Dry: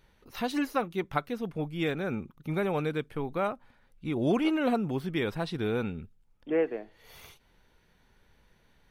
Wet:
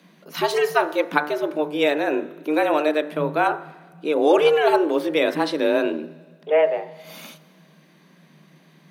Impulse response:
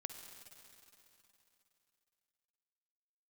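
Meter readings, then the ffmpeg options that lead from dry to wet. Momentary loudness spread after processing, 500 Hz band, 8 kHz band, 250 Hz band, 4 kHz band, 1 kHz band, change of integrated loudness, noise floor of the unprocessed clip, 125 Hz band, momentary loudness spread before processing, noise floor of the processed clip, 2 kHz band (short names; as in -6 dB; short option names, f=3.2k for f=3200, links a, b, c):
15 LU, +12.5 dB, n/a, +5.0 dB, +11.0 dB, +12.0 dB, +10.0 dB, -66 dBFS, -4.5 dB, 12 LU, -54 dBFS, +11.5 dB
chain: -filter_complex "[0:a]bandreject=f=49.26:t=h:w=4,bandreject=f=98.52:t=h:w=4,bandreject=f=147.78:t=h:w=4,bandreject=f=197.04:t=h:w=4,bandreject=f=246.3:t=h:w=4,bandreject=f=295.56:t=h:w=4,bandreject=f=344.82:t=h:w=4,bandreject=f=394.08:t=h:w=4,bandreject=f=443.34:t=h:w=4,bandreject=f=492.6:t=h:w=4,bandreject=f=541.86:t=h:w=4,bandreject=f=591.12:t=h:w=4,bandreject=f=640.38:t=h:w=4,bandreject=f=689.64:t=h:w=4,bandreject=f=738.9:t=h:w=4,bandreject=f=788.16:t=h:w=4,bandreject=f=837.42:t=h:w=4,bandreject=f=886.68:t=h:w=4,bandreject=f=935.94:t=h:w=4,bandreject=f=985.2:t=h:w=4,bandreject=f=1.03446k:t=h:w=4,bandreject=f=1.08372k:t=h:w=4,bandreject=f=1.13298k:t=h:w=4,bandreject=f=1.18224k:t=h:w=4,bandreject=f=1.2315k:t=h:w=4,bandreject=f=1.28076k:t=h:w=4,bandreject=f=1.33002k:t=h:w=4,bandreject=f=1.37928k:t=h:w=4,bandreject=f=1.42854k:t=h:w=4,bandreject=f=1.4778k:t=h:w=4,bandreject=f=1.52706k:t=h:w=4,bandreject=f=1.57632k:t=h:w=4,bandreject=f=1.62558k:t=h:w=4,bandreject=f=1.67484k:t=h:w=4,bandreject=f=1.7241k:t=h:w=4,bandreject=f=1.77336k:t=h:w=4,bandreject=f=1.82262k:t=h:w=4,bandreject=f=1.87188k:t=h:w=4,bandreject=f=1.92114k:t=h:w=4,afreqshift=150,asplit=2[a][b];[1:a]atrim=start_sample=2205,asetrate=79380,aresample=44100[c];[b][c]afir=irnorm=-1:irlink=0,volume=-3dB[d];[a][d]amix=inputs=2:normalize=0,volume=8.5dB"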